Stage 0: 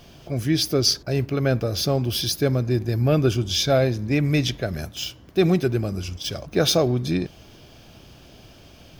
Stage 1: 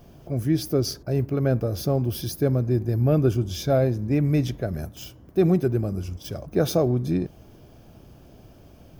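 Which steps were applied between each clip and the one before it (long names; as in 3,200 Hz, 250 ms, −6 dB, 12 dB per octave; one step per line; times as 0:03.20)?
parametric band 3,600 Hz −14 dB 2.5 octaves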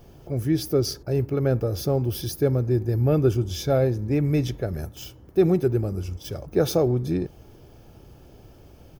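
comb filter 2.3 ms, depth 32%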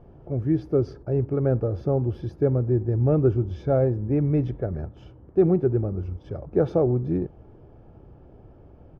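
low-pass filter 1,200 Hz 12 dB per octave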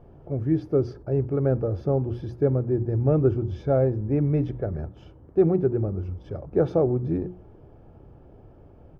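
mains-hum notches 60/120/180/240/300/360 Hz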